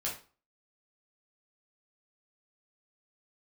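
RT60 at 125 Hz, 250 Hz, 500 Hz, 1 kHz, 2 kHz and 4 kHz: 0.35 s, 0.40 s, 0.35 s, 0.40 s, 0.30 s, 0.30 s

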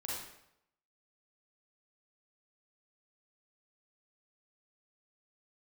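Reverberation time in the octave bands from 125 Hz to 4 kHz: 0.80 s, 0.75 s, 0.80 s, 0.75 s, 0.70 s, 0.65 s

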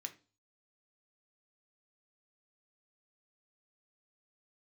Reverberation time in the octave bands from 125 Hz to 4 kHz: 0.55 s, 0.40 s, 0.35 s, 0.35 s, 0.30 s, 0.40 s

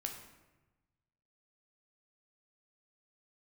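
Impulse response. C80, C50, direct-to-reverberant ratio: 9.0 dB, 6.5 dB, 2.5 dB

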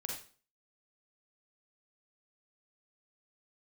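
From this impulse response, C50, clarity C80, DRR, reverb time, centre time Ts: 2.5 dB, 8.0 dB, -1.0 dB, 0.40 s, 37 ms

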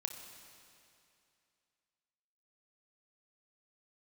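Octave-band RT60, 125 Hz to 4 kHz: 2.6 s, 2.6 s, 2.6 s, 2.6 s, 2.6 s, 2.5 s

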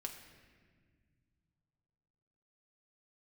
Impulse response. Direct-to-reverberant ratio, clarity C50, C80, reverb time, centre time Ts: 2.0 dB, 7.5 dB, 8.5 dB, 1.7 s, 31 ms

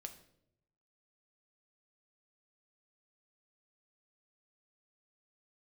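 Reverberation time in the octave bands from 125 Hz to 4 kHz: 1.2 s, 0.95 s, 0.90 s, 0.60 s, 0.55 s, 0.55 s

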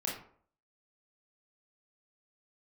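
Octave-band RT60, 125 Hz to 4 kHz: 0.55 s, 0.55 s, 0.55 s, 0.55 s, 0.40 s, 0.30 s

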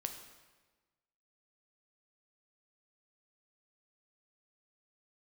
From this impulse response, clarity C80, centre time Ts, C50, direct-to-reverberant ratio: 9.5 dB, 24 ms, 7.5 dB, 5.0 dB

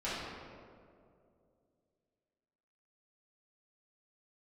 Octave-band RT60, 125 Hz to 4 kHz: 2.9 s, 2.8 s, 2.8 s, 2.0 s, 1.5 s, 1.1 s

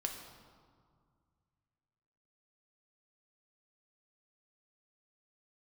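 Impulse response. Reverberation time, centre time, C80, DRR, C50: 2.0 s, 42 ms, 7.0 dB, 2.0 dB, 5.5 dB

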